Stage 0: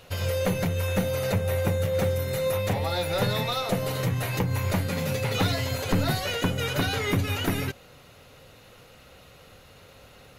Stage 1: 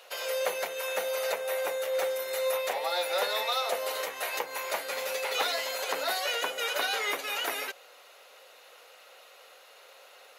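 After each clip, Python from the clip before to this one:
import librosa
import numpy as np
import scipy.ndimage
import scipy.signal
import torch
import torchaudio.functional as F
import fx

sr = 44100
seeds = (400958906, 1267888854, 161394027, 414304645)

y = scipy.signal.sosfilt(scipy.signal.butter(4, 510.0, 'highpass', fs=sr, output='sos'), x)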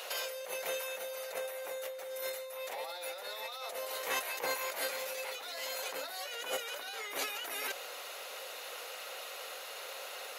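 y = fx.high_shelf(x, sr, hz=5500.0, db=5.0)
y = fx.over_compress(y, sr, threshold_db=-40.0, ratio=-1.0)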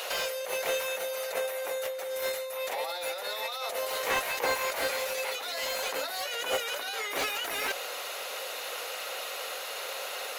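y = fx.slew_limit(x, sr, full_power_hz=56.0)
y = y * 10.0 ** (7.5 / 20.0)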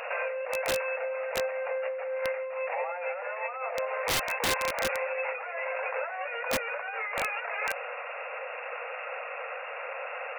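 y = fx.brickwall_bandpass(x, sr, low_hz=440.0, high_hz=2800.0)
y = (np.mod(10.0 ** (22.5 / 20.0) * y + 1.0, 2.0) - 1.0) / 10.0 ** (22.5 / 20.0)
y = y * 10.0 ** (2.0 / 20.0)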